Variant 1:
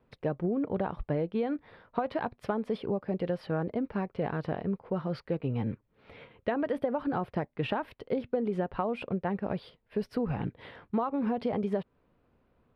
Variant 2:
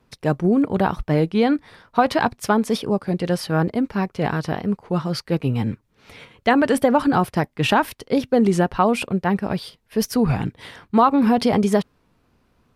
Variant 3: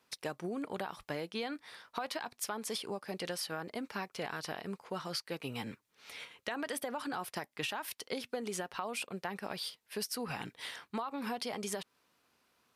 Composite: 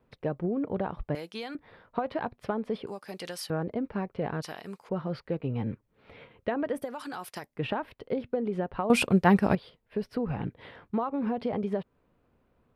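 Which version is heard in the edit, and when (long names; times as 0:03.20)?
1
0:01.15–0:01.55: punch in from 3
0:02.87–0:03.50: punch in from 3
0:04.42–0:04.89: punch in from 3
0:06.84–0:07.50: punch in from 3, crossfade 0.24 s
0:08.90–0:09.55: punch in from 2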